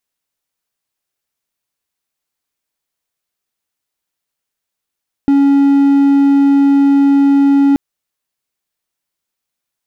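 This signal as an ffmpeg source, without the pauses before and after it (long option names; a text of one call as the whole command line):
ffmpeg -f lavfi -i "aevalsrc='0.596*(1-4*abs(mod(279*t+0.25,1)-0.5))':duration=2.48:sample_rate=44100" out.wav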